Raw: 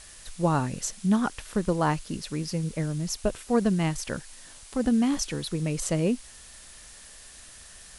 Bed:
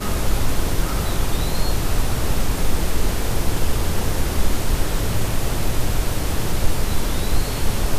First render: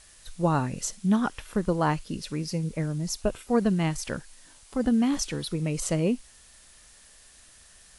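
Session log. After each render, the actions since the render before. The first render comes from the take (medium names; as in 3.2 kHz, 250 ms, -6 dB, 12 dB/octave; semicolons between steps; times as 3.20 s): noise print and reduce 6 dB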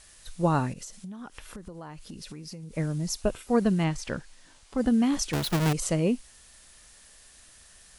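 0.73–2.76 s: compression 16:1, threshold -37 dBFS; 3.84–4.78 s: distance through air 56 m; 5.33–5.73 s: square wave that keeps the level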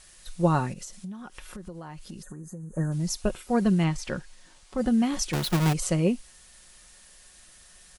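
2.22–2.92 s: time-frequency box 1.9–6.1 kHz -26 dB; comb 5.5 ms, depth 40%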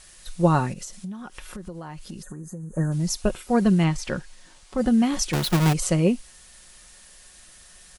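trim +3.5 dB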